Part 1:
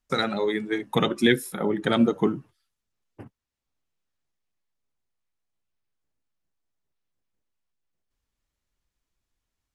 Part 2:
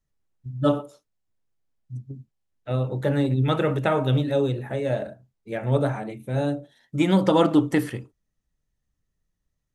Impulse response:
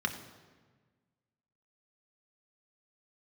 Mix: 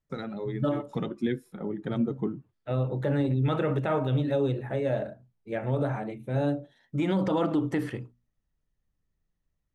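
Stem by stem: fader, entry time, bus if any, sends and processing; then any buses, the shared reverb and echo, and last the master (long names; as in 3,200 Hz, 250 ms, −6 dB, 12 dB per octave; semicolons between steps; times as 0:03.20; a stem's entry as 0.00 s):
−15.5 dB, 0.00 s, no send, low-shelf EQ 450 Hz +12 dB
−1.5 dB, 0.00 s, no send, mains-hum notches 60/120/180/240 Hz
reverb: not used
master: low-pass filter 2,800 Hz 6 dB per octave; brickwall limiter −18 dBFS, peak gain reduction 10 dB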